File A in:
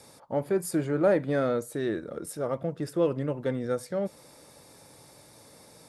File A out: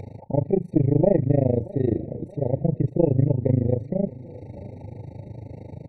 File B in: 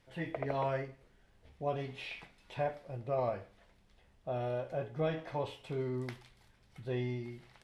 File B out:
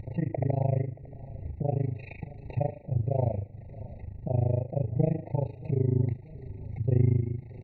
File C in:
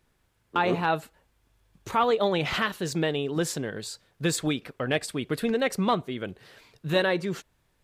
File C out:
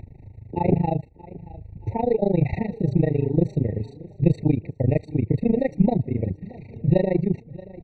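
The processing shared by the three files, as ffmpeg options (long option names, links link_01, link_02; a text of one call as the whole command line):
ffmpeg -i in.wav -af "lowpass=2400,tremolo=f=26:d=0.974,equalizer=frequency=98:width=1.1:gain=13.5,acompressor=mode=upward:threshold=-36dB:ratio=2.5,tiltshelf=frequency=780:gain=6.5,aeval=exprs='0.398*(cos(1*acos(clip(val(0)/0.398,-1,1)))-cos(1*PI/2))+0.0631*(cos(2*acos(clip(val(0)/0.398,-1,1)))-cos(2*PI/2))':channel_layout=same,aecho=1:1:628|1256|1884:0.1|0.046|0.0212,afftfilt=real='re*eq(mod(floor(b*sr/1024/920),2),0)':imag='im*eq(mod(floor(b*sr/1024/920),2),0)':win_size=1024:overlap=0.75,volume=3.5dB" out.wav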